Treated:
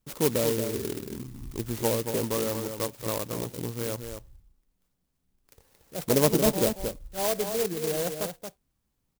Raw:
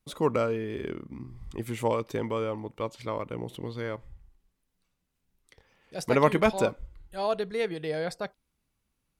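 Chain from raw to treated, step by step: low-pass that closes with the level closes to 710 Hz, closed at -22.5 dBFS; echo from a far wall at 39 m, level -7 dB; sampling jitter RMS 0.15 ms; trim +1.5 dB

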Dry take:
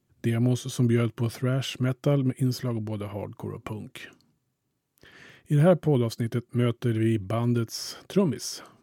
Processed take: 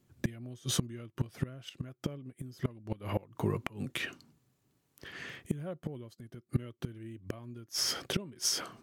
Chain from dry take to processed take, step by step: inverted gate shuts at -21 dBFS, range -25 dB; dynamic bell 2.4 kHz, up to +3 dB, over -54 dBFS, Q 0.71; trim +3.5 dB

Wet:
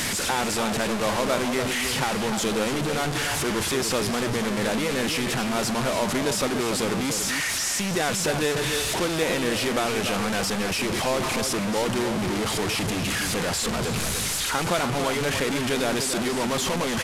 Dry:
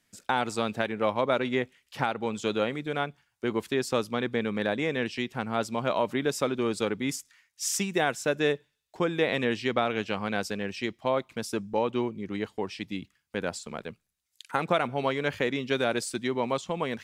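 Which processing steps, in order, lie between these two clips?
one-bit delta coder 64 kbps, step -20.5 dBFS; echo from a far wall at 50 m, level -7 dB

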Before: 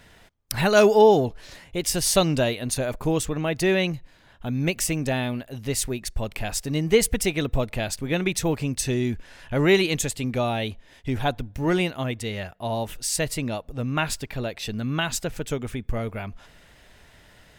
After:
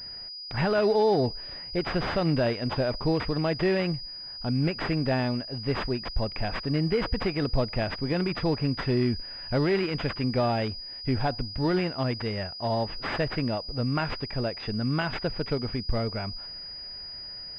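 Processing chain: peak limiter -15.5 dBFS, peak gain reduction 10 dB; class-D stage that switches slowly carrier 4.9 kHz

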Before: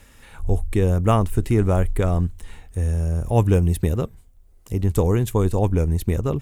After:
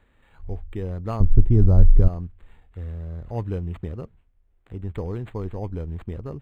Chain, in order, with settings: 1.20–2.08 s: tilt EQ -4.5 dB/octave; decimation joined by straight lines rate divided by 8×; trim -11 dB

